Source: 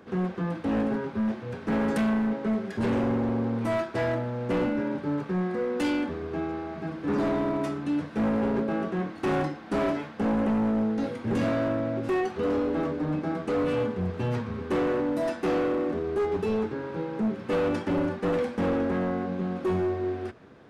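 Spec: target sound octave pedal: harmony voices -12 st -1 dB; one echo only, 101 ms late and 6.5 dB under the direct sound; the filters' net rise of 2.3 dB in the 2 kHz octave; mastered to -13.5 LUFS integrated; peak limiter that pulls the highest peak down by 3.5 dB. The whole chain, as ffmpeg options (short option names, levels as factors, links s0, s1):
-filter_complex "[0:a]equalizer=f=2000:t=o:g=3,alimiter=limit=0.0668:level=0:latency=1,aecho=1:1:101:0.473,asplit=2[s0][s1];[s1]asetrate=22050,aresample=44100,atempo=2,volume=0.891[s2];[s0][s2]amix=inputs=2:normalize=0,volume=4.47"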